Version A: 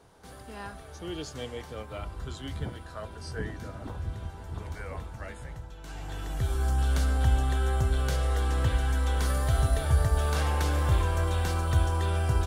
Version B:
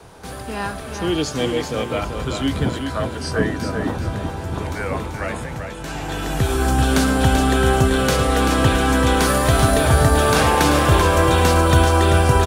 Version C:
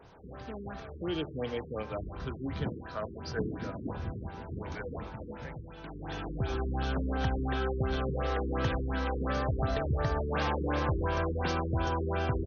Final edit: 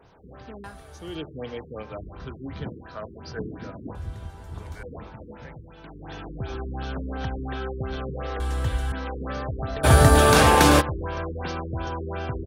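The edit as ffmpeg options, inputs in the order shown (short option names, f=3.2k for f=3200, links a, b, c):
-filter_complex "[0:a]asplit=3[a][b][c];[2:a]asplit=5[d][e][f][g][h];[d]atrim=end=0.642[i];[a]atrim=start=0.638:end=1.152[j];[e]atrim=start=1.148:end=3.952[k];[b]atrim=start=3.948:end=4.832[l];[f]atrim=start=4.828:end=8.402[m];[c]atrim=start=8.398:end=8.922[n];[g]atrim=start=8.918:end=9.85[o];[1:a]atrim=start=9.83:end=10.82[p];[h]atrim=start=10.8[q];[i][j]acrossfade=d=0.004:c1=hsin:c2=hsin[r];[r][k]acrossfade=d=0.004:c1=hsin:c2=hsin[s];[s][l]acrossfade=d=0.004:c1=hsin:c2=hsin[t];[t][m]acrossfade=d=0.004:c1=hsin:c2=hsin[u];[u][n]acrossfade=d=0.004:c1=hsin:c2=hsin[v];[v][o]acrossfade=d=0.004:c1=hsin:c2=hsin[w];[w][p]acrossfade=d=0.02:c1=tri:c2=tri[x];[x][q]acrossfade=d=0.02:c1=tri:c2=tri"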